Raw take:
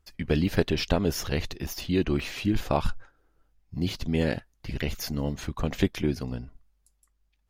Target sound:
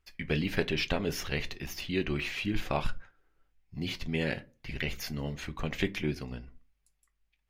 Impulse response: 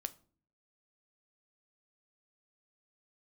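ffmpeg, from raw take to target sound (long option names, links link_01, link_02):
-filter_complex "[0:a]equalizer=frequency=2300:width=1.1:gain=9.5[link_01];[1:a]atrim=start_sample=2205,asetrate=74970,aresample=44100[link_02];[link_01][link_02]afir=irnorm=-1:irlink=0"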